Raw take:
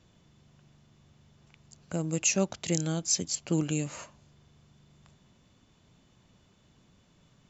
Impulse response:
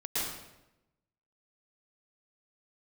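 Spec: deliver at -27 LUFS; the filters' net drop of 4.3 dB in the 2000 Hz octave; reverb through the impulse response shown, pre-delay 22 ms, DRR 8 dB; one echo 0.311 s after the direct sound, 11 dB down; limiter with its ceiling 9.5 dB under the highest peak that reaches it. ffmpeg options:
-filter_complex "[0:a]equalizer=f=2k:t=o:g=-6.5,alimiter=limit=-20.5dB:level=0:latency=1,aecho=1:1:311:0.282,asplit=2[a][b];[1:a]atrim=start_sample=2205,adelay=22[c];[b][c]afir=irnorm=-1:irlink=0,volume=-14.5dB[d];[a][d]amix=inputs=2:normalize=0,volume=5dB"

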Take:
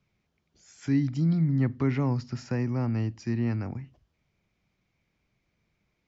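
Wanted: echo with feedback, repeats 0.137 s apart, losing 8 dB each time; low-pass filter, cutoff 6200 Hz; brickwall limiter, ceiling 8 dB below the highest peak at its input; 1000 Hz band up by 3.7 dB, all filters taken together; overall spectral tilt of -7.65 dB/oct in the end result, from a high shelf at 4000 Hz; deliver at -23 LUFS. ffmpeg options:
-af "lowpass=6.2k,equalizer=f=1k:t=o:g=4,highshelf=f=4k:g=8,alimiter=limit=-22dB:level=0:latency=1,aecho=1:1:137|274|411|548|685:0.398|0.159|0.0637|0.0255|0.0102,volume=8dB"

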